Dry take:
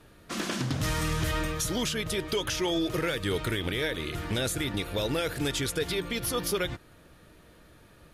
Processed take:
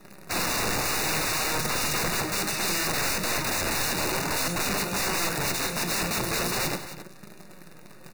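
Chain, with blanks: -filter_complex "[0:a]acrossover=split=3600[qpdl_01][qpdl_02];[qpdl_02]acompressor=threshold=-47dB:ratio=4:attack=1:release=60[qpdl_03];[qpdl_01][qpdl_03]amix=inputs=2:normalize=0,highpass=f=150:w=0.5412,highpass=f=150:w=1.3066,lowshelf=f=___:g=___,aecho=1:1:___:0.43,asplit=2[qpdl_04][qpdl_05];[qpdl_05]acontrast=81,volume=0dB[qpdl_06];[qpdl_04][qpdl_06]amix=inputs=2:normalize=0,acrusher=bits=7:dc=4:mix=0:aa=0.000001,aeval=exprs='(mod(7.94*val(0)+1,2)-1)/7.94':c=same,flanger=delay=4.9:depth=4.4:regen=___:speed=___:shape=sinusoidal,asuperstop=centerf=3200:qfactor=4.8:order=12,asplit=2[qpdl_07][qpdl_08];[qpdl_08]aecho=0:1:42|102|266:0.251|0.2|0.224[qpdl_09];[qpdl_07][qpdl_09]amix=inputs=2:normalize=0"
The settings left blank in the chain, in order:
250, 8.5, 5.4, 81, 0.41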